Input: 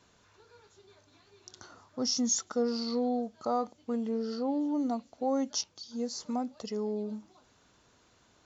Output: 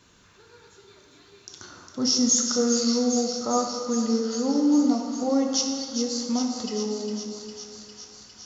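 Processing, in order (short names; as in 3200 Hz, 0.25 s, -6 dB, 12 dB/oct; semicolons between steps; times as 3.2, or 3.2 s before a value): bell 710 Hz -8 dB 1 oct; thin delay 0.405 s, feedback 76%, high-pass 1900 Hz, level -7 dB; on a send at -1 dB: reverb RT60 2.2 s, pre-delay 8 ms; on the sum: gain +7 dB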